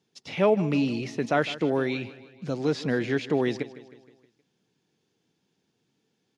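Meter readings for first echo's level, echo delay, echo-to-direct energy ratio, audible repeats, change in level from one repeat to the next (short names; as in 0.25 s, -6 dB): -17.0 dB, 0.157 s, -15.5 dB, 4, -5.5 dB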